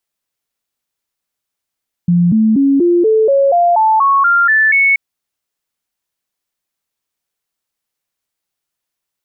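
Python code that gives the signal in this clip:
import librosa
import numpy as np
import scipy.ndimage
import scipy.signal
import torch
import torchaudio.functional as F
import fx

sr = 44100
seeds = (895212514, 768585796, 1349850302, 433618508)

y = fx.stepped_sweep(sr, from_hz=174.0, direction='up', per_octave=3, tones=12, dwell_s=0.24, gap_s=0.0, level_db=-7.5)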